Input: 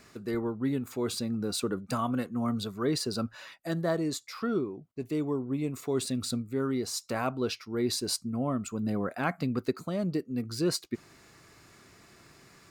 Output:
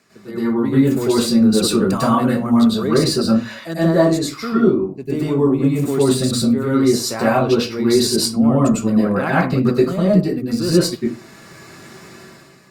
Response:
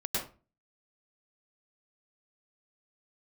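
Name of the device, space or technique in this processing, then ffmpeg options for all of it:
far-field microphone of a smart speaker: -filter_complex "[1:a]atrim=start_sample=2205[a];[0:a][a]afir=irnorm=-1:irlink=0,highpass=f=110:w=0.5412,highpass=f=110:w=1.3066,dynaudnorm=f=110:g=9:m=11.5dB,volume=-1dB" -ar 48000 -c:a libopus -b:a 48k

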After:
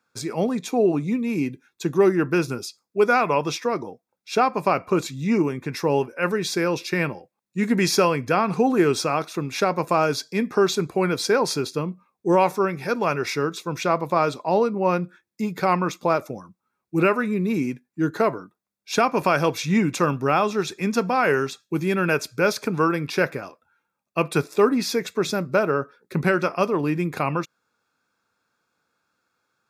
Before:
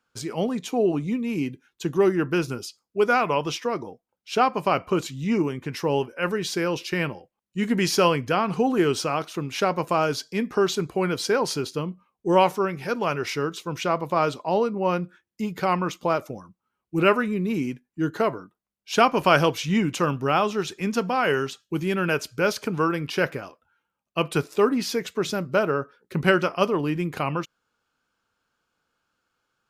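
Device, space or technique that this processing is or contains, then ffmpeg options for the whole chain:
PA system with an anti-feedback notch: -af "highpass=100,asuperstop=centerf=3000:order=4:qfactor=6.7,alimiter=limit=-9.5dB:level=0:latency=1:release=236,volume=2.5dB"

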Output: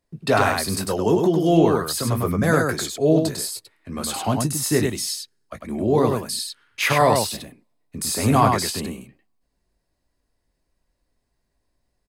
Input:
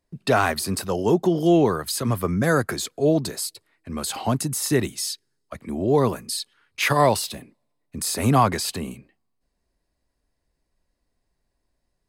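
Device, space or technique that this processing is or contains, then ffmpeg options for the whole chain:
slapback doubling: -filter_complex "[0:a]asplit=3[a][b][c];[b]adelay=19,volume=-8.5dB[d];[c]adelay=100,volume=-4dB[e];[a][d][e]amix=inputs=3:normalize=0"

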